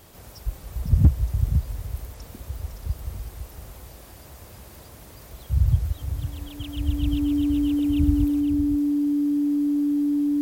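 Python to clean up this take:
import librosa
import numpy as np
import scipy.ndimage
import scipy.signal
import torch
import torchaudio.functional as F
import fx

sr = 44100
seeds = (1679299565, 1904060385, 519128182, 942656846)

y = fx.fix_declip(x, sr, threshold_db=-8.0)
y = fx.notch(y, sr, hz=290.0, q=30.0)
y = fx.fix_echo_inverse(y, sr, delay_ms=508, level_db=-9.5)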